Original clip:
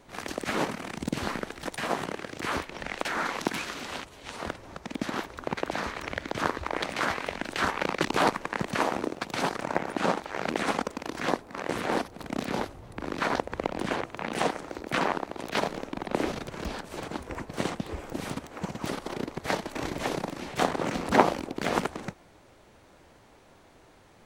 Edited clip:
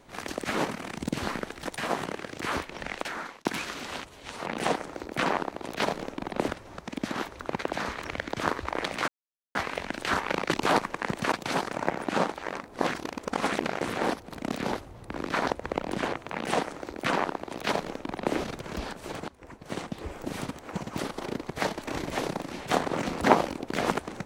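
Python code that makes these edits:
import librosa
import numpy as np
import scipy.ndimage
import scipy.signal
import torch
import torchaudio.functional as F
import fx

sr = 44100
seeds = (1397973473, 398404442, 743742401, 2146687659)

y = fx.edit(x, sr, fx.fade_out_span(start_s=2.9, length_s=0.55),
    fx.insert_silence(at_s=7.06, length_s=0.47),
    fx.cut(start_s=8.83, length_s=0.37),
    fx.reverse_span(start_s=10.36, length_s=1.31),
    fx.duplicate(start_s=14.21, length_s=2.02, to_s=4.46),
    fx.fade_in_from(start_s=17.16, length_s=0.91, floor_db=-19.0), tone=tone)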